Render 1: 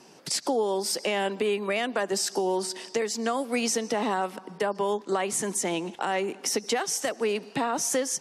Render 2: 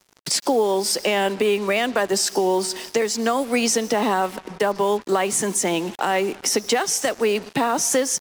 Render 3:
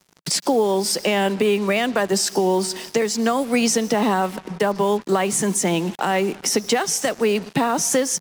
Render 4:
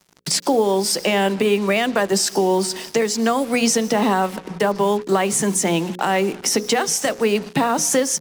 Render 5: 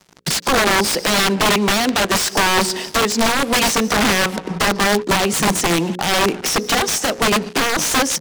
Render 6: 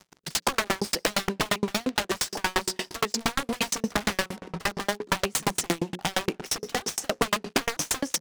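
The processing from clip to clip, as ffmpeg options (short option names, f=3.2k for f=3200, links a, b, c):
-af "acrusher=bits=6:mix=0:aa=0.5,volume=6.5dB"
-af "equalizer=f=170:t=o:w=0.81:g=8"
-af "bandreject=f=60:t=h:w=6,bandreject=f=120:t=h:w=6,bandreject=f=180:t=h:w=6,bandreject=f=240:t=h:w=6,bandreject=f=300:t=h:w=6,bandreject=f=360:t=h:w=6,bandreject=f=420:t=h:w=6,bandreject=f=480:t=h:w=6,bandreject=f=540:t=h:w=6,volume=1.5dB"
-af "alimiter=limit=-11.5dB:level=0:latency=1:release=488,aeval=exprs='(mod(6.68*val(0)+1,2)-1)/6.68':c=same,highshelf=f=10k:g=-9.5,volume=7dB"
-af "acompressor=threshold=-18dB:ratio=6,aeval=exprs='val(0)*pow(10,-39*if(lt(mod(8.6*n/s,1),2*abs(8.6)/1000),1-mod(8.6*n/s,1)/(2*abs(8.6)/1000),(mod(8.6*n/s,1)-2*abs(8.6)/1000)/(1-2*abs(8.6)/1000))/20)':c=same,volume=2dB"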